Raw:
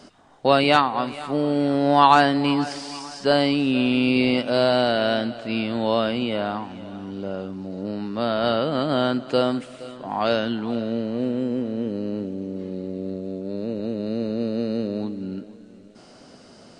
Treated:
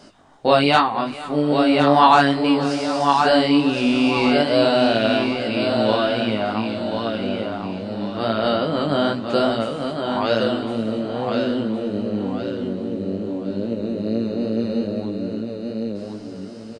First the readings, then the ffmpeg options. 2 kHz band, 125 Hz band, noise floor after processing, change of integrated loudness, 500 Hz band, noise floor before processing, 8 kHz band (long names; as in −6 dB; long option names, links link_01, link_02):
+3.0 dB, +2.5 dB, −34 dBFS, +2.5 dB, +3.0 dB, −48 dBFS, can't be measured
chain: -af "aecho=1:1:1063|2126|3189|4252:0.562|0.197|0.0689|0.0241,flanger=delay=17.5:depth=3.6:speed=2.4,volume=4.5dB"